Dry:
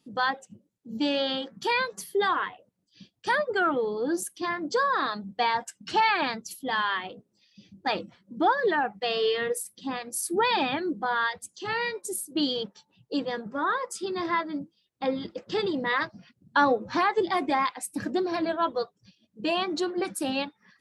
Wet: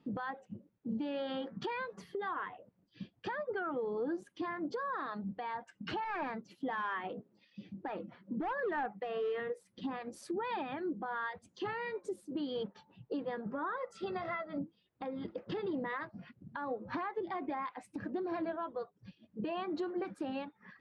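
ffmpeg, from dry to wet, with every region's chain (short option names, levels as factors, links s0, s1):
-filter_complex "[0:a]asettb=1/sr,asplit=3[s0][s1][s2];[s0]atrim=end=6.044[s3];[s1]atrim=start=6.04:end=9.4,asetpts=PTS-STARTPTS,afade=t=in:d=0.004:c=qsin,afade=t=out:st=3.356:d=0.004:c=qsin,highpass=140,acrossover=split=2900[s4][s5];[s5]acompressor=threshold=0.00501:ratio=4:attack=1:release=60[s6];[s4][s6]amix=inputs=2:normalize=0,volume=12.6,asoftclip=hard,volume=0.0794[s7];[s2]atrim=start=9.396[s8];[s3][s7]acrossfade=d=0.004:c1=hsin:c2=qsin[s9];[s9][s8]acrossfade=d=0.004:c1=qsin:c2=hsin,asettb=1/sr,asplit=3[s10][s11][s12];[s10]atrim=end=13.764[s13];[s11]atrim=start=13.76:end=14.58,asetpts=PTS-STARTPTS,afade=t=in:d=0.004:c=qsin,afade=t=out:st=0.816:d=0.004:c=qsin,bandreject=f=50:t=h:w=6,bandreject=f=100:t=h:w=6,bandreject=f=150:t=h:w=6,bandreject=f=200:t=h:w=6,bandreject=f=250:t=h:w=6,bandreject=f=300:t=h:w=6,bandreject=f=350:t=h:w=6,aecho=1:1:1.5:0.75,atrim=end_sample=36162[s14];[s12]atrim=start=14.576[s15];[s13][s14]acrossfade=d=0.004:c1=hsin:c2=qsin[s16];[s16][s15]acrossfade=d=0.004:c1=qsin:c2=hsin,lowpass=1900,acompressor=threshold=0.0112:ratio=6,alimiter=level_in=3.35:limit=0.0631:level=0:latency=1:release=203,volume=0.299,volume=1.88"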